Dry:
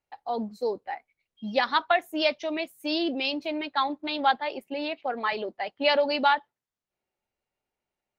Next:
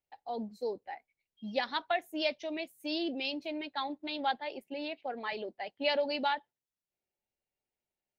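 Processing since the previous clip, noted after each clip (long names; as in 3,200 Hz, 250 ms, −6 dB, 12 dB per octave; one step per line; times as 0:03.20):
parametric band 1,200 Hz −8 dB 0.66 octaves
level −6.5 dB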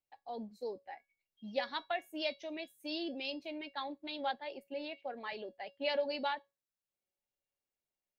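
tuned comb filter 560 Hz, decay 0.23 s, harmonics all, mix 70%
level +4.5 dB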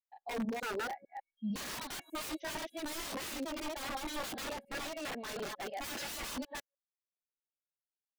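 delay that plays each chunk backwards 150 ms, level −1.5 dB
wrap-around overflow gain 37 dB
every bin expanded away from the loudest bin 1.5 to 1
level +8 dB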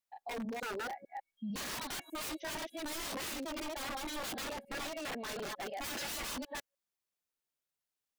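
brickwall limiter −39 dBFS, peak gain reduction 10 dB
level +4.5 dB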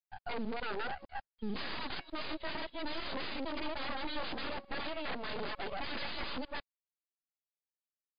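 half-wave rectification
log-companded quantiser 6 bits
level +6.5 dB
MP3 48 kbit/s 11,025 Hz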